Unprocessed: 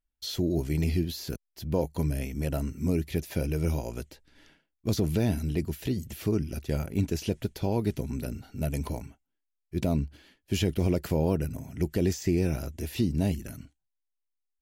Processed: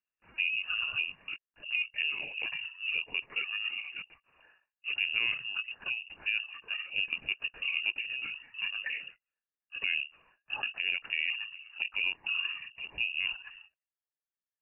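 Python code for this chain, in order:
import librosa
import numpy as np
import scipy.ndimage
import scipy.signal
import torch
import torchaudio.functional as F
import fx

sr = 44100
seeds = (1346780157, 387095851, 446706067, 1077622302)

y = fx.pitch_trill(x, sr, semitones=-7.0, every_ms=491)
y = fx.rider(y, sr, range_db=10, speed_s=2.0)
y = scipy.signal.sosfilt(scipy.signal.butter(2, 92.0, 'highpass', fs=sr, output='sos'), y)
y = fx.lpc_vocoder(y, sr, seeds[0], excitation='pitch_kept', order=16)
y = fx.peak_eq(y, sr, hz=1100.0, db=10.5, octaves=0.41)
y = fx.freq_invert(y, sr, carrier_hz=2800)
y = y * 10.0 ** (-6.0 / 20.0)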